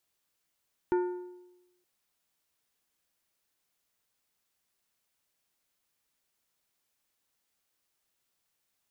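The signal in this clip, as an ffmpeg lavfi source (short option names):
-f lavfi -i "aevalsrc='0.0794*pow(10,-3*t/1.01)*sin(2*PI*359*t)+0.0282*pow(10,-3*t/0.767)*sin(2*PI*897.5*t)+0.01*pow(10,-3*t/0.666)*sin(2*PI*1436*t)+0.00355*pow(10,-3*t/0.623)*sin(2*PI*1795*t)+0.00126*pow(10,-3*t/0.576)*sin(2*PI*2333.5*t)':d=0.92:s=44100"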